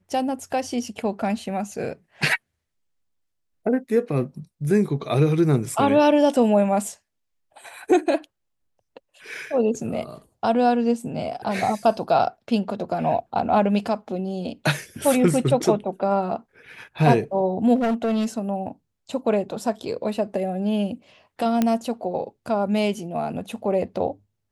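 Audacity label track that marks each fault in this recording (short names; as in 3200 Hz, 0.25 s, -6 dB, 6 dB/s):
17.750000	18.260000	clipped -19 dBFS
21.620000	21.620000	pop -8 dBFS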